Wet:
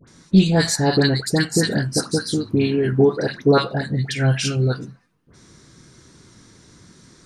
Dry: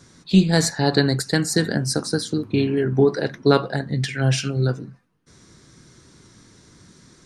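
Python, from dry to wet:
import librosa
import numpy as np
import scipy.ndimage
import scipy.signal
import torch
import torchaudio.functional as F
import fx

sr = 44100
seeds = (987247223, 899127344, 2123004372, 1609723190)

y = fx.dispersion(x, sr, late='highs', ms=76.0, hz=1400.0)
y = y * librosa.db_to_amplitude(1.5)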